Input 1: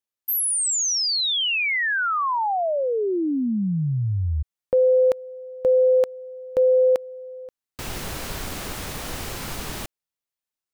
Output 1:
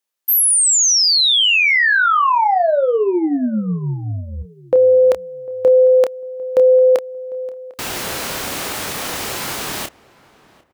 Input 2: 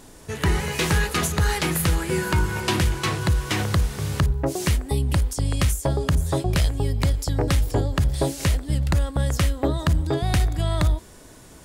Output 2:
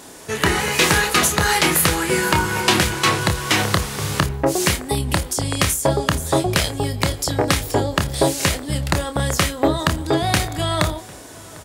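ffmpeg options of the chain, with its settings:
-filter_complex "[0:a]highpass=f=340:p=1,asplit=2[a][b];[b]adelay=28,volume=-8dB[c];[a][c]amix=inputs=2:normalize=0,asplit=2[d][e];[e]adelay=750,lowpass=f=1.8k:p=1,volume=-22dB,asplit=2[f][g];[g]adelay=750,lowpass=f=1.8k:p=1,volume=0.33[h];[d][f][h]amix=inputs=3:normalize=0,volume=8.5dB"

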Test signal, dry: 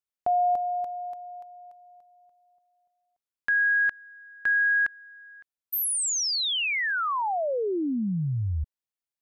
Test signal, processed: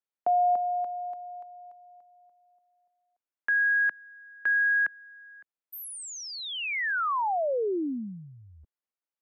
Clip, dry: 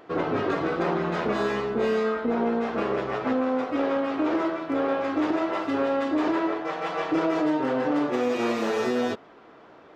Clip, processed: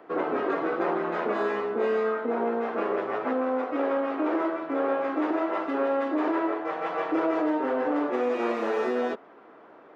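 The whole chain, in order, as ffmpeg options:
-filter_complex "[0:a]acrossover=split=190 2400:gain=0.178 1 0.224[a][b][c];[a][b][c]amix=inputs=3:normalize=0,acrossover=split=220|1300[d][e][f];[d]acompressor=threshold=-52dB:ratio=6:release=151[g];[g][e][f]amix=inputs=3:normalize=0"

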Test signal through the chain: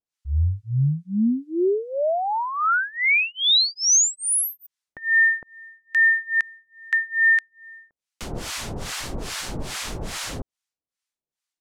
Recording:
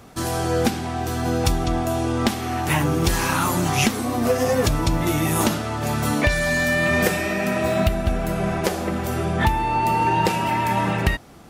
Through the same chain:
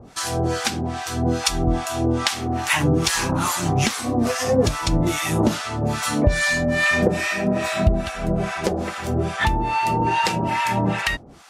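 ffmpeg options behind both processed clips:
-filter_complex "[0:a]lowpass=7.6k,highshelf=f=4.9k:g=7,acrossover=split=820[a][b];[a]aeval=exprs='val(0)*(1-1/2+1/2*cos(2*PI*2.4*n/s))':c=same[c];[b]aeval=exprs='val(0)*(1-1/2-1/2*cos(2*PI*2.4*n/s))':c=same[d];[c][d]amix=inputs=2:normalize=0,volume=4.5dB"

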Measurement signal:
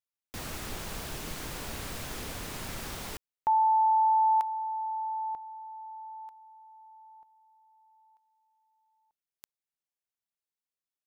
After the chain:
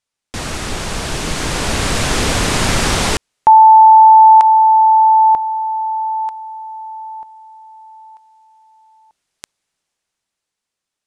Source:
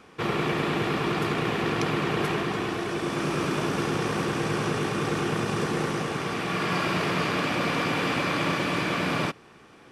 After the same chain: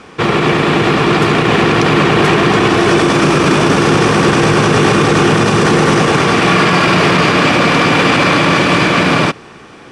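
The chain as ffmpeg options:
-af "lowpass=f=9.6k:w=0.5412,lowpass=f=9.6k:w=1.3066,dynaudnorm=f=260:g=13:m=9dB,alimiter=level_in=16dB:limit=-1dB:release=50:level=0:latency=1,volume=-1dB"

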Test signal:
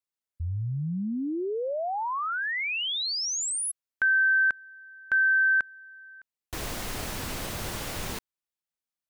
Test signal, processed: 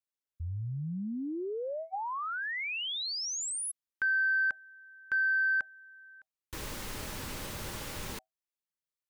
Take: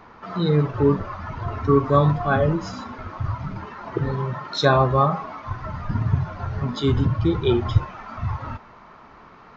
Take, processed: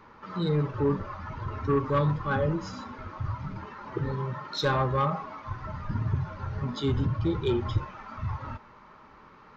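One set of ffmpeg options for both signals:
-af "asoftclip=type=tanh:threshold=-11.5dB,asuperstop=centerf=700:order=20:qfactor=7,volume=-5.5dB"

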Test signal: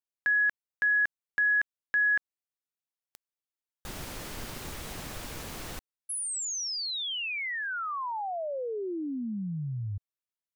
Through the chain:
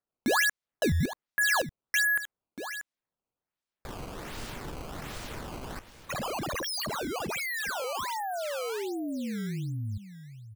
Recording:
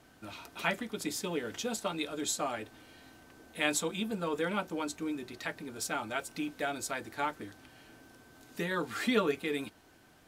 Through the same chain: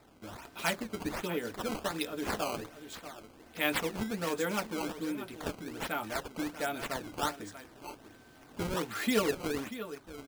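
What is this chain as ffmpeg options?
-filter_complex "[0:a]asplit=2[a][b];[b]aecho=0:1:637:0.237[c];[a][c]amix=inputs=2:normalize=0,acrusher=samples=14:mix=1:aa=0.000001:lfo=1:lforange=22.4:lforate=1.3"

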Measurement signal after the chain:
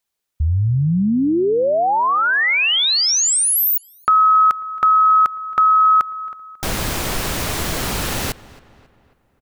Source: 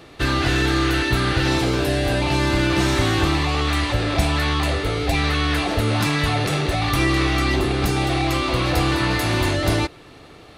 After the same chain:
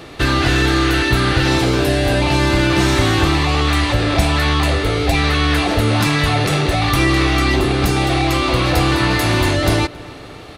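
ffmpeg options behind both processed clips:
-filter_complex "[0:a]asplit=2[a][b];[b]acompressor=threshold=-29dB:ratio=6,volume=-0.5dB[c];[a][c]amix=inputs=2:normalize=0,asplit=2[d][e];[e]adelay=272,lowpass=f=3.2k:p=1,volume=-20dB,asplit=2[f][g];[g]adelay=272,lowpass=f=3.2k:p=1,volume=0.51,asplit=2[h][i];[i]adelay=272,lowpass=f=3.2k:p=1,volume=0.51,asplit=2[j][k];[k]adelay=272,lowpass=f=3.2k:p=1,volume=0.51[l];[d][f][h][j][l]amix=inputs=5:normalize=0,volume=2.5dB"

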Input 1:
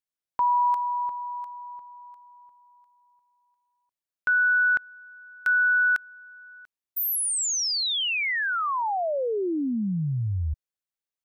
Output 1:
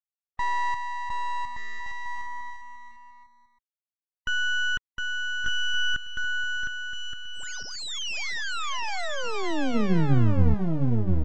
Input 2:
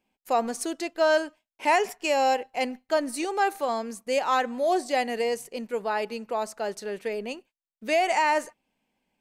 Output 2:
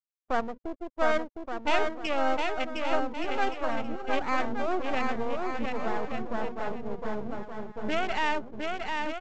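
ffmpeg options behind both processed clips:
-filter_complex "[0:a]highpass=81,bandreject=f=50:t=h:w=6,bandreject=f=100:t=h:w=6,bandreject=f=150:t=h:w=6,bandreject=f=200:t=h:w=6,bandreject=f=250:t=h:w=6,afwtdn=0.0282,acrossover=split=3800[a][b];[b]acompressor=threshold=-37dB:ratio=4:attack=1:release=60[c];[a][c]amix=inputs=2:normalize=0,asubboost=boost=5.5:cutoff=200,afftfilt=real='re*gte(hypot(re,im),0.0224)':imag='im*gte(hypot(re,im),0.0224)':win_size=1024:overlap=0.75,aresample=16000,aeval=exprs='max(val(0),0)':c=same,aresample=44100,aecho=1:1:710|1172|1471|1666|1793:0.631|0.398|0.251|0.158|0.1"

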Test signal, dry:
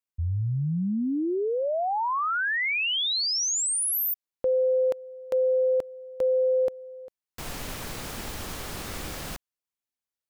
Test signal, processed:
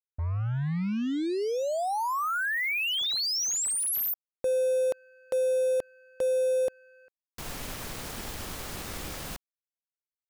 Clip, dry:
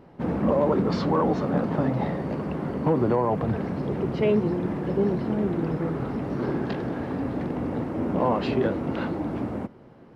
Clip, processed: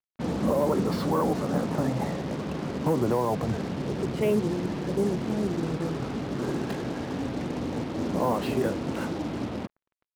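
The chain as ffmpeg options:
-af "acrusher=bits=5:mix=0:aa=0.5,volume=-2.5dB"

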